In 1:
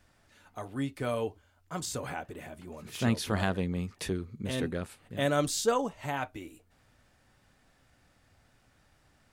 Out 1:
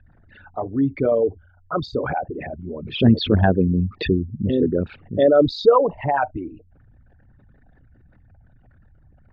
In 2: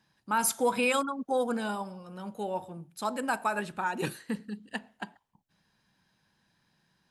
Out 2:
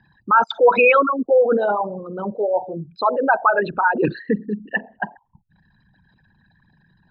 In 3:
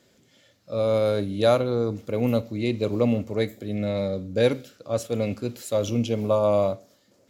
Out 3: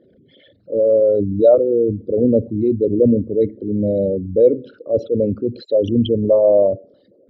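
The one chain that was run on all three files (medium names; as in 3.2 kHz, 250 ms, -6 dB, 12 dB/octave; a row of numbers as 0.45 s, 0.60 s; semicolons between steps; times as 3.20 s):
resonances exaggerated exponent 3; steep low-pass 4.2 kHz 48 dB/octave; peak normalisation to -3 dBFS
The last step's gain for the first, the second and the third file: +13.0 dB, +13.5 dB, +8.0 dB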